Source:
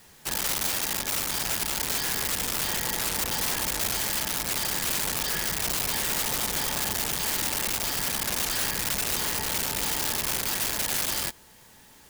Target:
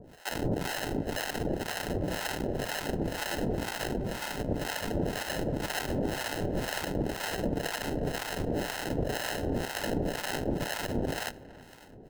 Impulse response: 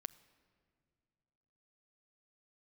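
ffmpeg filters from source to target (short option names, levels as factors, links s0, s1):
-filter_complex "[0:a]asettb=1/sr,asplit=3[s0][s1][s2];[s0]atrim=end=3.974[s3];[s1]atrim=start=3.97:end=4.39,asetpts=PTS-STARTPTS,afade=t=in:d=0.004:c=qsin,afade=t=out:st=0.416:d=0.004:c=qsin,tiltshelf=f=1200:g=8.5[s4];[s2]atrim=start=4.386[s5];[s3][s4]acrossfade=d=0.004:c1=hsin:c2=qsin[s6];[s6][s5]acrossfade=d=0.004:c1=qsin:c2=hsin,asplit=2[s7][s8];[s8]acompressor=threshold=0.0126:ratio=6,volume=1.19[s9];[s7][s9]amix=inputs=2:normalize=0,acrusher=samples=38:mix=1:aa=0.000001,acrossover=split=670[s10][s11];[s10]aeval=exprs='val(0)*(1-1/2+1/2*cos(2*PI*2*n/s))':c=same[s12];[s11]aeval=exprs='val(0)*(1-1/2-1/2*cos(2*PI*2*n/s))':c=same[s13];[s12][s13]amix=inputs=2:normalize=0,asplit=2[s14][s15];[s15]adelay=327,lowpass=f=1800:p=1,volume=0.126,asplit=2[s16][s17];[s17]adelay=327,lowpass=f=1800:p=1,volume=0.46,asplit=2[s18][s19];[s19]adelay=327,lowpass=f=1800:p=1,volume=0.46,asplit=2[s20][s21];[s21]adelay=327,lowpass=f=1800:p=1,volume=0.46[s22];[s14][s16][s18][s20][s22]amix=inputs=5:normalize=0,asplit=2[s23][s24];[1:a]atrim=start_sample=2205,afade=t=out:st=0.18:d=0.01,atrim=end_sample=8379,lowshelf=f=340:g=-9[s25];[s24][s25]afir=irnorm=-1:irlink=0,volume=2.11[s26];[s23][s26]amix=inputs=2:normalize=0,volume=0.473"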